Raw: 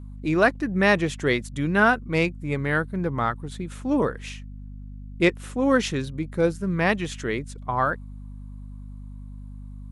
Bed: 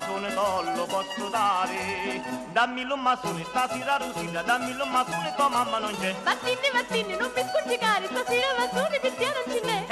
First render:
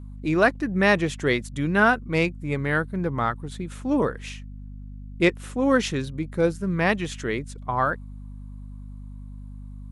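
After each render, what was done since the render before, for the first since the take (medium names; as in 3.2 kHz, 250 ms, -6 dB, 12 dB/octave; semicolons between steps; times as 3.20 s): no audible change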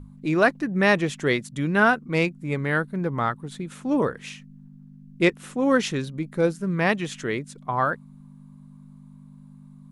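hum notches 50/100 Hz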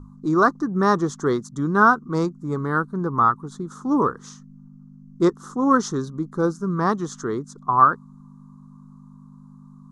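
FFT filter 140 Hz 0 dB, 400 Hz +4 dB, 590 Hz -7 dB, 1.2 kHz +13 dB, 2.5 kHz -29 dB, 3.5 kHz -9 dB, 6.3 kHz +5 dB, 9.7 kHz -9 dB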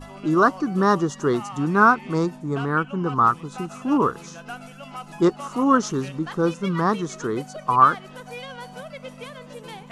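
add bed -12.5 dB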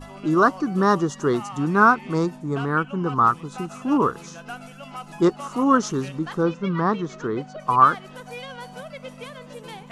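6.43–7.60 s: distance through air 150 m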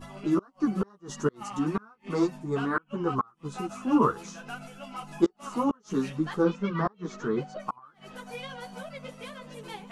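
inverted gate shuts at -10 dBFS, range -36 dB; three-phase chorus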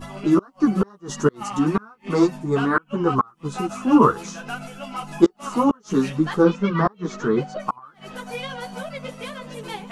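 trim +8 dB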